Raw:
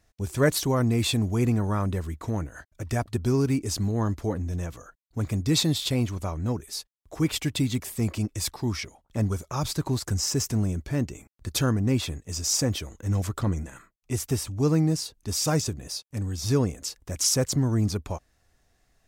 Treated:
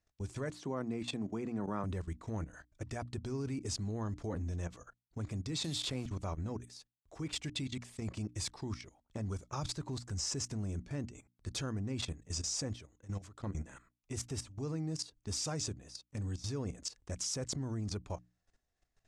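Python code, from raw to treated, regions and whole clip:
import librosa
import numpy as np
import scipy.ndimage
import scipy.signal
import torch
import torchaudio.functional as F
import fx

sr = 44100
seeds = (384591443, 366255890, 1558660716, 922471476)

y = fx.chain(x, sr, fx.highpass(hz=150.0, slope=24),
    fx.high_shelf(hz=3200.0, db=-10.5), at=(0.5, 1.84))
y = fx.chain(y, sr, fx.delta_hold(step_db=-41.0),
    fx.high_shelf(hz=11000.0, db=8.5),
    fx.band_squash(depth_pct=100), at=(5.64, 6.06))
y = fx.chain(y, sr, fx.peak_eq(hz=2900.0, db=4.0, octaves=1.9),
    fx.level_steps(step_db=15), at=(7.48, 8.02))
y = fx.chain(y, sr, fx.low_shelf(hz=190.0, db=-3.5),
    fx.level_steps(step_db=13), at=(12.73, 13.55))
y = fx.level_steps(y, sr, step_db=16)
y = scipy.signal.sosfilt(scipy.signal.butter(4, 8700.0, 'lowpass', fs=sr, output='sos'), y)
y = fx.hum_notches(y, sr, base_hz=60, count=5)
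y = y * 10.0 ** (-4.5 / 20.0)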